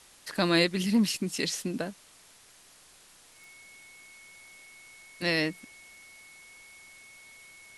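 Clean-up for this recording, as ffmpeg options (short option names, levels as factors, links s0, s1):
-af "adeclick=t=4,bandreject=f=2200:w=30,afwtdn=0.002"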